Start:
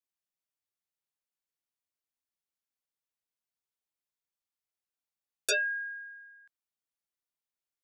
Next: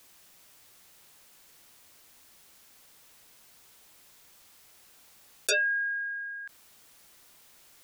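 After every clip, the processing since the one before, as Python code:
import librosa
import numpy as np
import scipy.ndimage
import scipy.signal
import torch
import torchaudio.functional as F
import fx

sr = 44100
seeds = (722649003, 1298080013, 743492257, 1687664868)

y = fx.env_flatten(x, sr, amount_pct=50)
y = F.gain(torch.from_numpy(y), 1.5).numpy()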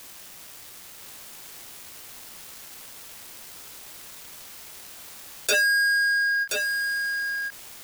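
y = fx.leveller(x, sr, passes=5)
y = y + 10.0 ** (-5.5 / 20.0) * np.pad(y, (int(1026 * sr / 1000.0), 0))[:len(y)]
y = fx.end_taper(y, sr, db_per_s=350.0)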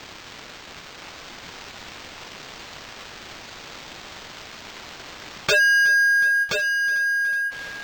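y = fx.spec_gate(x, sr, threshold_db=-20, keep='strong')
y = fx.echo_thinned(y, sr, ms=368, feedback_pct=83, hz=420.0, wet_db=-21.0)
y = np.interp(np.arange(len(y)), np.arange(len(y))[::4], y[::4])
y = F.gain(torch.from_numpy(y), 5.0).numpy()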